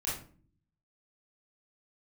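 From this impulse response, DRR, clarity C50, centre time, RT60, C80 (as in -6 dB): -8.0 dB, 3.5 dB, 43 ms, 0.45 s, 9.5 dB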